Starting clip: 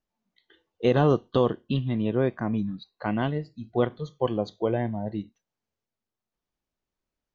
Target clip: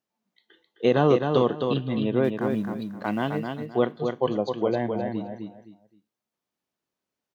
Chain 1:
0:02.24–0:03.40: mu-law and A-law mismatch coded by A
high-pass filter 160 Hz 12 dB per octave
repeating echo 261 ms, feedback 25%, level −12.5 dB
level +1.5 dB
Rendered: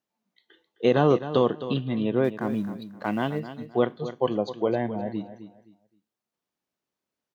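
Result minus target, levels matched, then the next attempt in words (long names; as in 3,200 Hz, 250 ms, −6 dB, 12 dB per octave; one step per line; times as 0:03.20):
echo-to-direct −7 dB
0:02.24–0:03.40: mu-law and A-law mismatch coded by A
high-pass filter 160 Hz 12 dB per octave
repeating echo 261 ms, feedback 25%, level −5.5 dB
level +1.5 dB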